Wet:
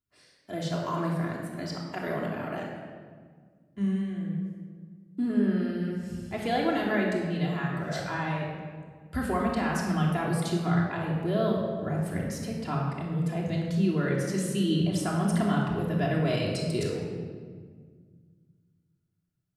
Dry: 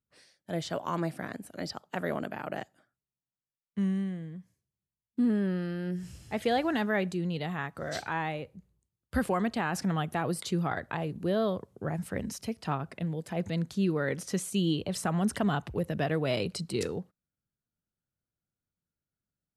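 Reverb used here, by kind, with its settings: shoebox room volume 2200 m³, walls mixed, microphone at 3.1 m; gain -3.5 dB

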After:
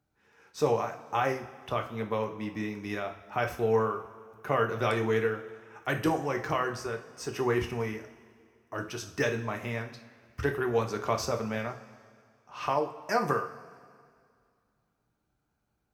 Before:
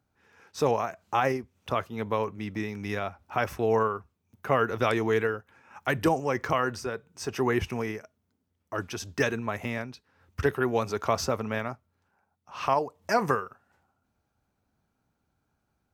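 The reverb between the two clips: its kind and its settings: two-slope reverb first 0.36 s, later 2.2 s, from -17 dB, DRR 3.5 dB; gain -4 dB

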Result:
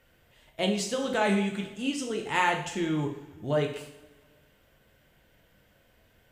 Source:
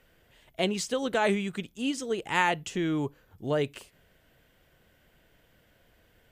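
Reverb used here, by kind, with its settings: two-slope reverb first 0.58 s, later 1.9 s, from -18 dB, DRR 1 dB; gain -2 dB

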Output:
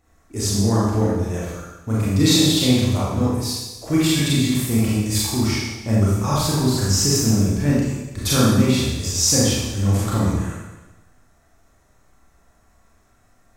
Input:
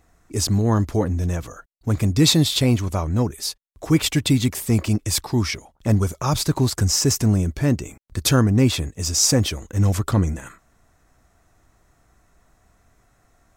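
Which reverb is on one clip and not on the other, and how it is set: Schroeder reverb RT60 1.1 s, combs from 28 ms, DRR -7 dB; gain -6 dB

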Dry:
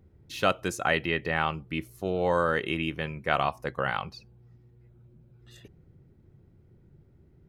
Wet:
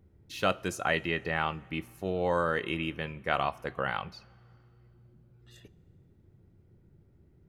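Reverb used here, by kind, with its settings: two-slope reverb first 0.23 s, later 2.4 s, from -19 dB, DRR 15 dB; gain -3 dB

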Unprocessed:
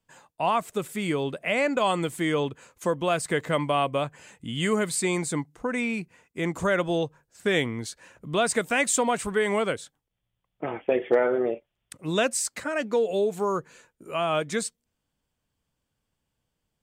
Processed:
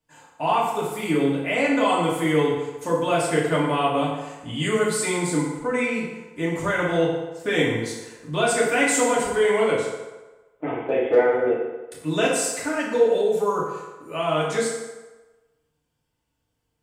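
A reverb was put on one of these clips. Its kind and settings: FDN reverb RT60 1.2 s, low-frequency decay 0.75×, high-frequency decay 0.7×, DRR -6.5 dB; gain -4 dB

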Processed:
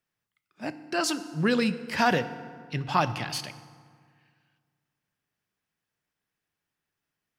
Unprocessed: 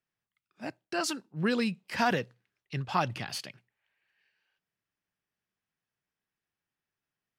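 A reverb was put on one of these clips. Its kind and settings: FDN reverb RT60 1.9 s, low-frequency decay 1.2×, high-frequency decay 0.6×, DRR 12 dB; gain +4 dB

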